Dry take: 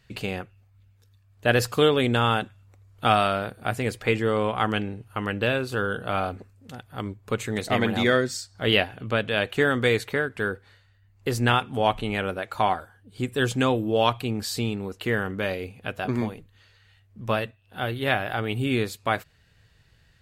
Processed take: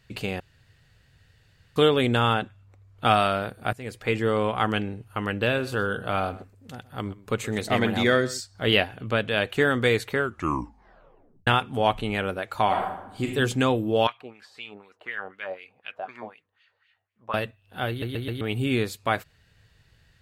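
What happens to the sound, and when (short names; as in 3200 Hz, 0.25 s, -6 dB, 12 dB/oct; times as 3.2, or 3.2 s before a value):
0.4–1.76 room tone
2.33–3.05 high shelf 7100 Hz -11.5 dB
3.73–4.24 fade in, from -16.5 dB
5.43–8.41 echo 0.124 s -18.5 dB
10.13 tape stop 1.34 s
12.66–13.26 reverb throw, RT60 0.87 s, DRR -0.5 dB
14.07–17.34 LFO band-pass sine 4 Hz 630–2800 Hz
17.89 stutter in place 0.13 s, 4 plays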